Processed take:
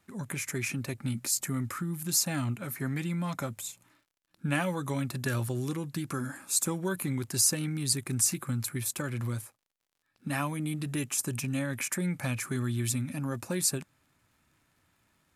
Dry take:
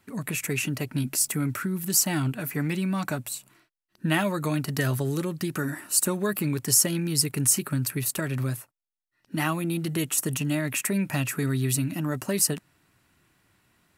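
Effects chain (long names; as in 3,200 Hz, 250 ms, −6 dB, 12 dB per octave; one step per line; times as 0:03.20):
surface crackle 95 per second −55 dBFS
speed change −9%
level −5 dB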